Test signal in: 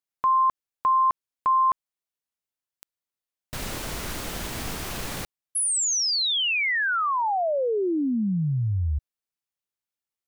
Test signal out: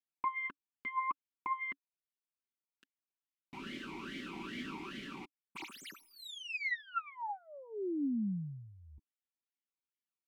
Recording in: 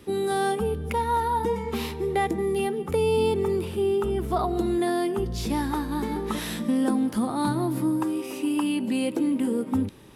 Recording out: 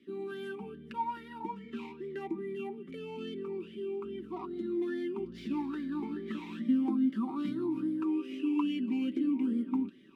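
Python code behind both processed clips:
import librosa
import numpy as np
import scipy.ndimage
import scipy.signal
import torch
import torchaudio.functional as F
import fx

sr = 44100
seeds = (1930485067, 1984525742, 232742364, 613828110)

y = fx.tracing_dist(x, sr, depth_ms=0.17)
y = y + 0.59 * np.pad(y, (int(5.2 * sr / 1000.0), 0))[:len(y)]
y = fx.rider(y, sr, range_db=4, speed_s=2.0)
y = fx.vowel_sweep(y, sr, vowels='i-u', hz=2.4)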